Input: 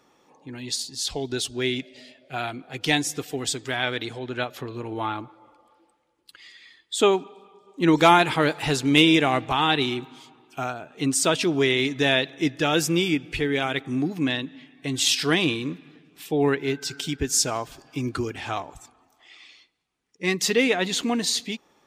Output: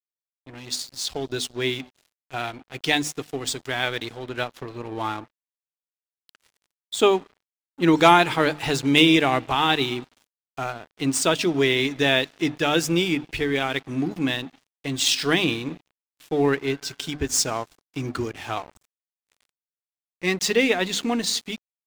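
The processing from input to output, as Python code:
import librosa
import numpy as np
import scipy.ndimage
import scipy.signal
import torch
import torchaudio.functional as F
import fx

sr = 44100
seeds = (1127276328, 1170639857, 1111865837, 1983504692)

y = scipy.ndimage.median_filter(x, 3, mode='constant')
y = fx.hum_notches(y, sr, base_hz=50, count=6)
y = np.sign(y) * np.maximum(np.abs(y) - 10.0 ** (-41.5 / 20.0), 0.0)
y = y * 10.0 ** (1.5 / 20.0)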